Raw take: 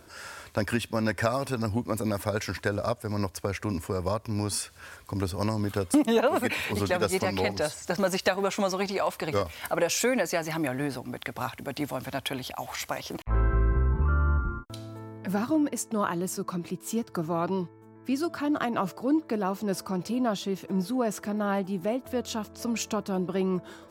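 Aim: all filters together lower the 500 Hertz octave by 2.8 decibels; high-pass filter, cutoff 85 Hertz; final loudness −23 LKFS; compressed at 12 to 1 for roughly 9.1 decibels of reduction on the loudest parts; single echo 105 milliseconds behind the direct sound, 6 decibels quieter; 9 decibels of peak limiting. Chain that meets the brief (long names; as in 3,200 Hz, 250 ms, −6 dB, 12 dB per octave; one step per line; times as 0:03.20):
high-pass filter 85 Hz
parametric band 500 Hz −3.5 dB
downward compressor 12 to 1, threshold −28 dBFS
brickwall limiter −23.5 dBFS
single-tap delay 105 ms −6 dB
level +11.5 dB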